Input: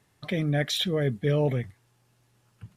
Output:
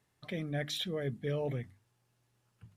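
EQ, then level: notches 50/100/150/200/250/300 Hz; -9.0 dB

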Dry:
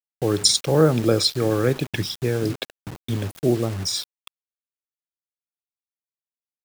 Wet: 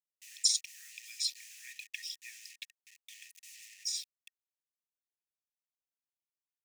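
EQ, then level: rippled Chebyshev high-pass 1800 Hz, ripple 9 dB; -6.5 dB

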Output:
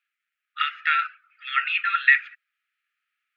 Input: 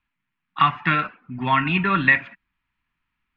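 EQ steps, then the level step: brick-wall FIR high-pass 1200 Hz; 0.0 dB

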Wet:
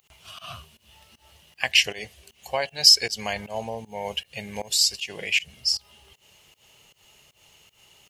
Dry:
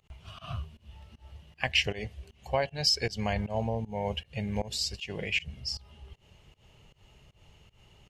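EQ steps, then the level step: RIAA curve recording; +3.0 dB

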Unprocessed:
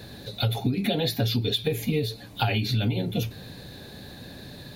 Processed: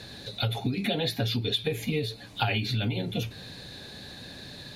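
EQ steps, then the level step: LPF 8400 Hz 12 dB/oct; tilt shelf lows -4 dB, about 1200 Hz; dynamic EQ 5500 Hz, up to -7 dB, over -42 dBFS, Q 0.84; 0.0 dB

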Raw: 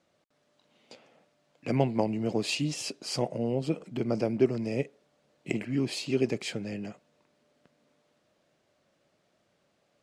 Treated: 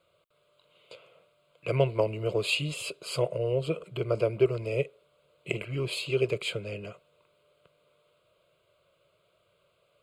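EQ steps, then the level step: bell 290 Hz -7 dB 0.68 oct; fixed phaser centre 1200 Hz, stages 8; +6.0 dB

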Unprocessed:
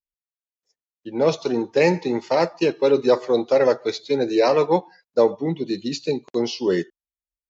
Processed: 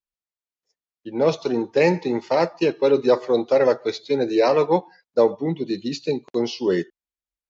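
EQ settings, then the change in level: air absorption 53 m; 0.0 dB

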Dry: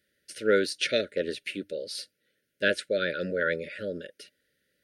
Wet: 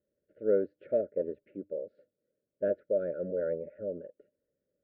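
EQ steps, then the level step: ladder low-pass 830 Hz, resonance 50%; +3.0 dB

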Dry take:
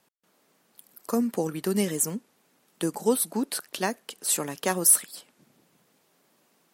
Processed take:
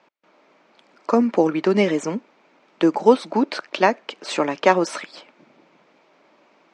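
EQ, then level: air absorption 150 m; speaker cabinet 210–7000 Hz, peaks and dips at 320 Hz +5 dB, 600 Hz +7 dB, 930 Hz +6 dB, 1300 Hz +4 dB, 2300 Hz +8 dB; +8.0 dB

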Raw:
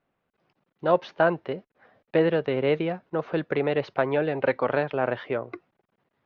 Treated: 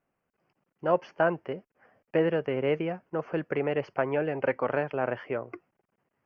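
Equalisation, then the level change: Butterworth band-stop 3800 Hz, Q 2.3; -3.5 dB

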